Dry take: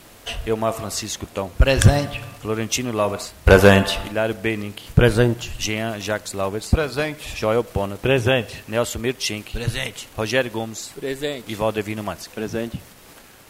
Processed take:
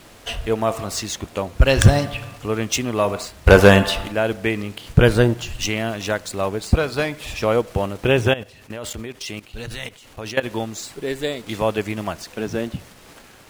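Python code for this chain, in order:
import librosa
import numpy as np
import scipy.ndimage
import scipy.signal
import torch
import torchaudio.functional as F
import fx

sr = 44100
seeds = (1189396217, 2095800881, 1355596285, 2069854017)

y = scipy.ndimage.median_filter(x, 3, mode='constant')
y = fx.level_steps(y, sr, step_db=16, at=(8.31, 10.43), fade=0.02)
y = y * 10.0 ** (1.0 / 20.0)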